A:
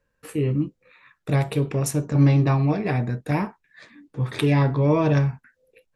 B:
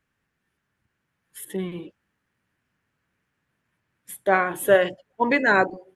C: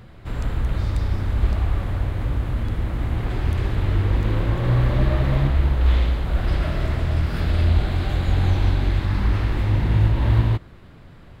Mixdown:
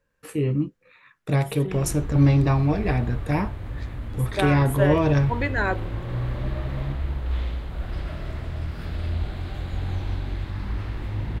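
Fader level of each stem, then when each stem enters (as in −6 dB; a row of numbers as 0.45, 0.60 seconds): −0.5, −6.5, −9.0 decibels; 0.00, 0.10, 1.45 seconds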